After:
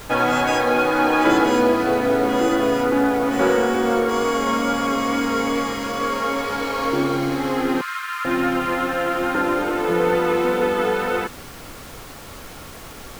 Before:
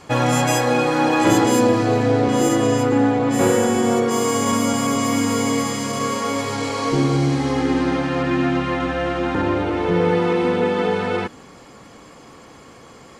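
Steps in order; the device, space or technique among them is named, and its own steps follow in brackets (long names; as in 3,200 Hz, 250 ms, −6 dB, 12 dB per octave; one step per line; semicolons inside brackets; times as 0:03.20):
horn gramophone (band-pass filter 260–4,100 Hz; parametric band 1,400 Hz +8 dB 0.21 octaves; tape wow and flutter 13 cents; pink noise bed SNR 18 dB)
0:07.81–0:08.25: Chebyshev high-pass filter 1,000 Hz, order 10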